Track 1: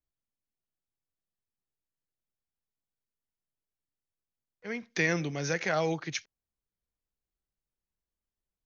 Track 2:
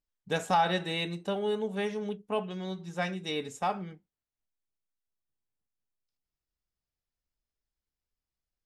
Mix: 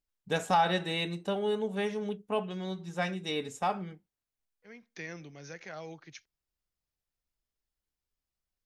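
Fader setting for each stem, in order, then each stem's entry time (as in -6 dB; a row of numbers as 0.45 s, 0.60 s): -14.5 dB, 0.0 dB; 0.00 s, 0.00 s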